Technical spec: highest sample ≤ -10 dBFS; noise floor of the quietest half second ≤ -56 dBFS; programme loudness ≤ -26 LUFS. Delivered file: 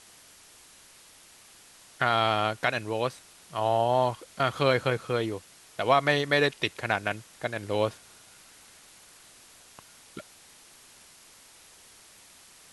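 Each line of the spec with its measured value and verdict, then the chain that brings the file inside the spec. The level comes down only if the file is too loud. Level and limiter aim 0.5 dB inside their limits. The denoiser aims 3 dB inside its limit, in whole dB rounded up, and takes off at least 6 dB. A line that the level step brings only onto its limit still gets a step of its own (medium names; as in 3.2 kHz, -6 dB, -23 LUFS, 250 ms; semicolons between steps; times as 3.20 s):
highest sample -8.5 dBFS: fail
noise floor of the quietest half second -54 dBFS: fail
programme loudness -27.0 LUFS: pass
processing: noise reduction 6 dB, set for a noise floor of -54 dBFS; peak limiter -10.5 dBFS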